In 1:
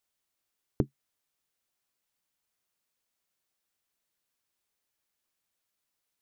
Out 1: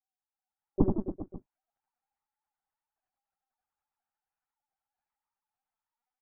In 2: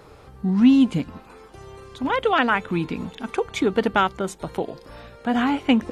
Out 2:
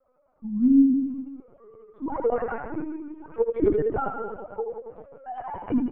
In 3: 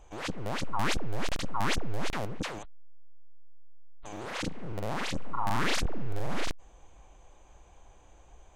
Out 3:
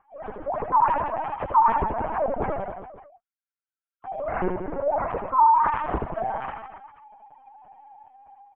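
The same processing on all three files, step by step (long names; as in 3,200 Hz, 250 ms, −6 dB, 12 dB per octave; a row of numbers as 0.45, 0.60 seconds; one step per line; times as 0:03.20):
three sine waves on the formant tracks
Chebyshev low-pass filter 910 Hz, order 2
automatic gain control gain up to 9 dB
flanger 0.67 Hz, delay 6.2 ms, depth 3.6 ms, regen −44%
reverse bouncing-ball delay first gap 80 ms, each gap 1.15×, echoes 5
linear-prediction vocoder at 8 kHz pitch kept
normalise the peak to −9 dBFS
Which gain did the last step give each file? +2.0, −4.0, −2.5 decibels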